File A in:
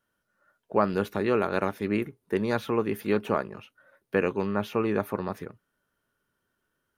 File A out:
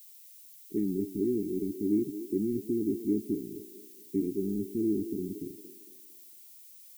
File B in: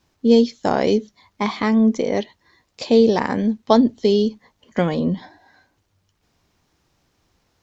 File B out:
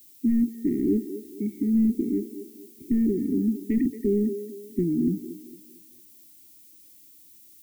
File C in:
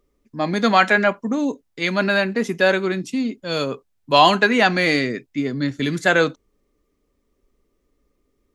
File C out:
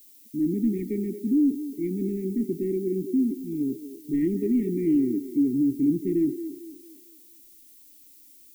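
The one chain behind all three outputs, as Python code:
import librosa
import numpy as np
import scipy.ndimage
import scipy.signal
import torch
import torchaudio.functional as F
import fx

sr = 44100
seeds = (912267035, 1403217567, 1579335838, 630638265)

p1 = fx.peak_eq(x, sr, hz=900.0, db=-7.0, octaves=0.58)
p2 = fx.quant_companded(p1, sr, bits=2)
p3 = p1 + F.gain(torch.from_numpy(p2), -11.5).numpy()
p4 = fx.formant_cascade(p3, sr, vowel='u')
p5 = fx.fold_sine(p4, sr, drive_db=7, ceiling_db=-10.5)
p6 = fx.dmg_noise_colour(p5, sr, seeds[0], colour='violet', level_db=-46.0)
p7 = fx.brickwall_bandstop(p6, sr, low_hz=430.0, high_hz=1800.0)
p8 = p7 + fx.echo_wet_bandpass(p7, sr, ms=226, feedback_pct=38, hz=750.0, wet_db=-5.5, dry=0)
y = F.gain(torch.from_numpy(p8), -6.5).numpy()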